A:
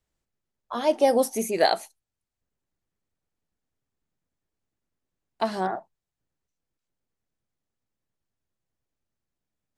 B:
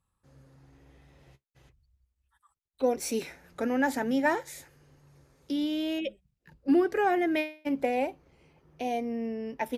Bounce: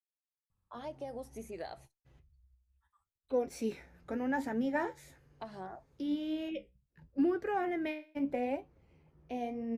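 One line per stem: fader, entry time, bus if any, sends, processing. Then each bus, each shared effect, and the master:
-15.0 dB, 0.00 s, no send, expander -48 dBFS; compression 6:1, threshold -24 dBFS, peak gain reduction 9.5 dB
-3.5 dB, 0.50 s, no send, bass shelf 170 Hz +9 dB; flange 0.73 Hz, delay 8.5 ms, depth 8.5 ms, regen +58%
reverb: none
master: treble shelf 3.9 kHz -8.5 dB

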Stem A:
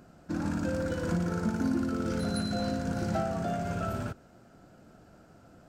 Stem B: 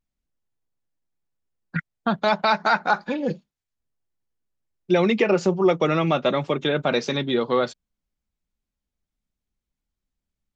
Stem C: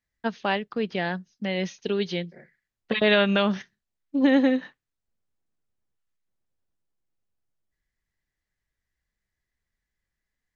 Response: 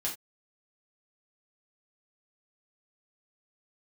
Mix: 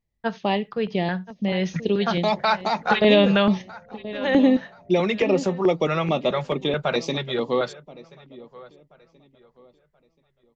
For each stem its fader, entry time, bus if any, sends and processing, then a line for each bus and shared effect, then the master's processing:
-18.5 dB, 1.20 s, no send, no echo send, resonant low-pass 580 Hz; compression, threshold -29 dBFS, peak gain reduction 9 dB
-0.5 dB, 0.00 s, no send, echo send -19.5 dB, none
+0.5 dB, 0.00 s, send -14.5 dB, echo send -14.5 dB, bass shelf 480 Hz +5 dB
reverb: on, pre-delay 3 ms
echo: feedback delay 1030 ms, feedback 31%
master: LFO notch square 2.3 Hz 280–1500 Hz; tape noise reduction on one side only decoder only

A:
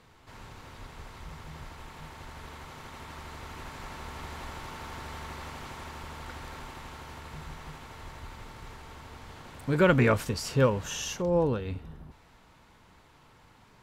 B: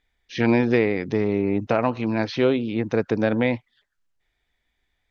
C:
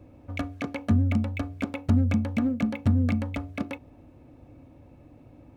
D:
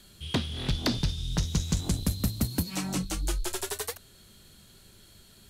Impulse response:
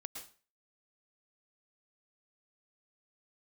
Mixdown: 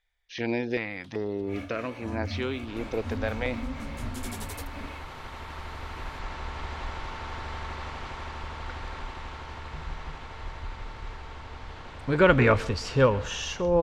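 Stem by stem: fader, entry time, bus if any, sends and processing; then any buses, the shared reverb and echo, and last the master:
+2.5 dB, 2.40 s, send -8.5 dB, low-pass 4.6 kHz 12 dB/octave; bass shelf 220 Hz +7 dB
-4.5 dB, 0.00 s, no send, step-sequenced notch 2.6 Hz 290–3300 Hz
-6.0 dB, 1.20 s, no send, phase randomisation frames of 200 ms
-7.5 dB, 0.70 s, no send, auto duck -23 dB, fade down 1.30 s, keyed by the second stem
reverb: on, RT60 0.40 s, pre-delay 103 ms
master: peaking EQ 160 Hz -9.5 dB 1.9 oct

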